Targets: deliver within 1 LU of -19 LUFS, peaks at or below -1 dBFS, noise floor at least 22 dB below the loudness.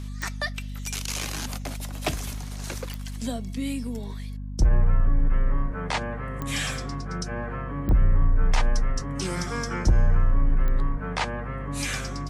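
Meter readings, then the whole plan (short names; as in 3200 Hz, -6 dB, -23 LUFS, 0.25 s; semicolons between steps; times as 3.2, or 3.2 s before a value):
clicks 5; hum 50 Hz; harmonics up to 250 Hz; hum level -32 dBFS; loudness -28.5 LUFS; peak -9.5 dBFS; loudness target -19.0 LUFS
-> de-click; notches 50/100/150/200/250 Hz; gain +9.5 dB; limiter -1 dBFS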